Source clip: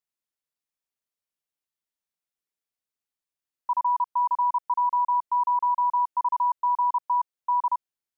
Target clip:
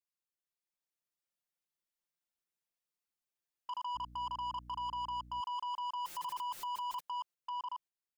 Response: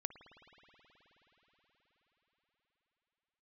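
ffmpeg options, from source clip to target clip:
-filter_complex "[0:a]asettb=1/sr,asplit=3[link_01][link_02][link_03];[link_01]atrim=end=6.044[link_04];[link_02]atrim=start=6.04:end=7,asetpts=PTS-STARTPTS,afade=type=in:duration=0.004:curve=qsin,afade=type=out:start_time=0.956:duration=0.004:curve=qsin,aeval=exprs='val(0)+0.5*0.00944*sgn(val(0))':channel_layout=same[link_05];[link_03]atrim=start=6.996[link_06];[link_04][link_05]acrossfade=duration=0.004:curve1=hsin:curve2=qsin[link_07];[link_07][link_06]acrossfade=duration=0.004:curve1=qsin:curve2=hsin,agate=range=-8dB:threshold=-40dB:ratio=16:detection=peak,aecho=1:1:5.7:0.78,alimiter=level_in=4dB:limit=-24dB:level=0:latency=1:release=254,volume=-4dB,dynaudnorm=framelen=150:gausssize=11:maxgain=4dB,asoftclip=type=tanh:threshold=-35dB,asettb=1/sr,asplit=3[link_08][link_09][link_10];[link_08]atrim=end=3.954[link_11];[link_09]atrim=start=3.95:end=5.41,asetpts=PTS-STARTPTS,afade=type=in:duration=0.004:curve=qsin,afade=type=out:start_time=1.456:duration=0.004:curve=qsin,aeval=exprs='val(0)+0.00224*(sin(2*PI*60*n/s)+sin(2*PI*2*60*n/s)/2+sin(2*PI*3*60*n/s)/3+sin(2*PI*4*60*n/s)/4+sin(2*PI*5*60*n/s)/5)':channel_layout=same[link_12];[link_10]atrim=start=5.406[link_13];[link_11][link_12]acrossfade=duration=0.004:curve1=hsin:curve2=qsin[link_14];[link_14][link_13]acrossfade=duration=0.004:curve1=qsin:curve2=hsin,volume=-1dB"

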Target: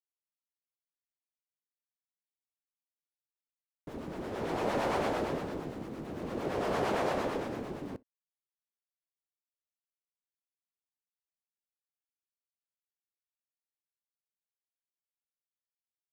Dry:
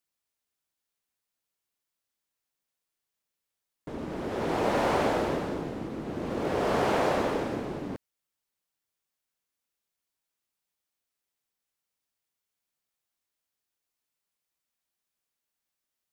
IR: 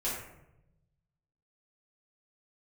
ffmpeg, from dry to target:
-filter_complex "[0:a]aeval=exprs='val(0)*gte(abs(val(0)),0.00299)':channel_layout=same,acrossover=split=670[link_01][link_02];[link_01]aeval=exprs='val(0)*(1-0.5/2+0.5/2*cos(2*PI*8.8*n/s))':channel_layout=same[link_03];[link_02]aeval=exprs='val(0)*(1-0.5/2-0.5/2*cos(2*PI*8.8*n/s))':channel_layout=same[link_04];[link_03][link_04]amix=inputs=2:normalize=0,asplit=2[link_05][link_06];[1:a]atrim=start_sample=2205,atrim=end_sample=3087[link_07];[link_06][link_07]afir=irnorm=-1:irlink=0,volume=-25.5dB[link_08];[link_05][link_08]amix=inputs=2:normalize=0,volume=-3dB"

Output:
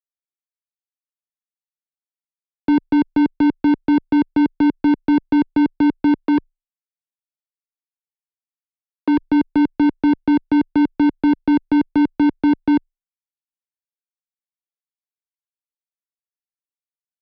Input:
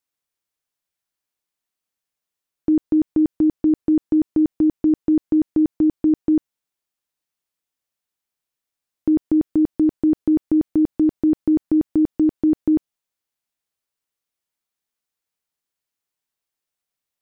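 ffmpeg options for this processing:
ffmpeg -i in.wav -filter_complex "[0:a]asettb=1/sr,asplit=3[link_01][link_02][link_03];[link_01]atrim=end=6.184[link_04];[link_02]atrim=start=6.18:end=9.27,asetpts=PTS-STARTPTS,afade=type=in:duration=0.004:curve=qsin,afade=type=out:start_time=3.086:duration=0.004:curve=qsin,highpass=300[link_05];[link_03]atrim=start=9.266[link_06];[link_04][link_05]acrossfade=duration=0.004:curve1=hsin:curve2=qsin[link_07];[link_07][link_06]acrossfade=duration=0.004:curve1=qsin:curve2=hsin,acrusher=bits=8:mix=0:aa=0.000001,asplit=2[link_08][link_09];[link_09]highpass=frequency=720:poles=1,volume=40dB,asoftclip=type=tanh:threshold=-11.5dB[link_10];[link_08][link_10]amix=inputs=2:normalize=0,lowpass=frequency=1000:poles=1,volume=-6dB,afreqshift=-19,aresample=11025,aresample=44100,volume=2.5dB" out.wav

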